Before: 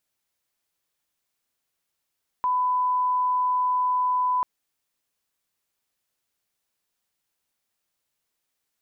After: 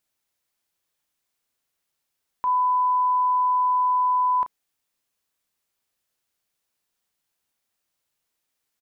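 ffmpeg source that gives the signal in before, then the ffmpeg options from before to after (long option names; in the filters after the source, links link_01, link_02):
-f lavfi -i "sine=frequency=1000:duration=1.99:sample_rate=44100,volume=-1.94dB"
-filter_complex "[0:a]asplit=2[link_01][link_02];[link_02]adelay=33,volume=-10dB[link_03];[link_01][link_03]amix=inputs=2:normalize=0"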